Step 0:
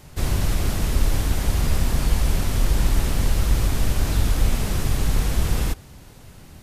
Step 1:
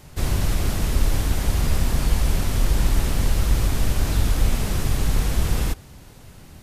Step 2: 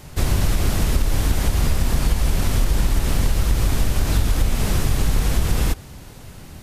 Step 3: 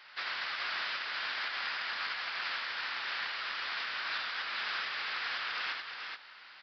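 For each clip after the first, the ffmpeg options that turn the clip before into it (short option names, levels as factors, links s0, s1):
-af anull
-af "acompressor=threshold=0.126:ratio=6,volume=1.78"
-filter_complex "[0:a]highpass=f=1500:t=q:w=1.9,asplit=2[s0][s1];[s1]aecho=0:1:83|426:0.473|0.562[s2];[s0][s2]amix=inputs=2:normalize=0,aresample=11025,aresample=44100,volume=0.473"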